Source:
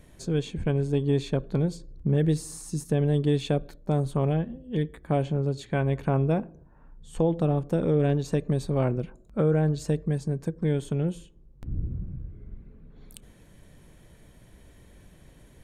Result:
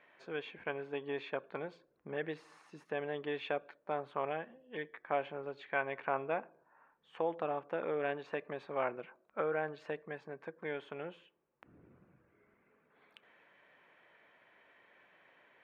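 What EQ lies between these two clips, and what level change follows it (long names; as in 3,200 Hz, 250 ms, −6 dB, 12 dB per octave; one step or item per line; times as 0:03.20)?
high-pass filter 910 Hz 12 dB per octave
high-frequency loss of the air 300 metres
high shelf with overshoot 3,300 Hz −8.5 dB, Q 1.5
+2.5 dB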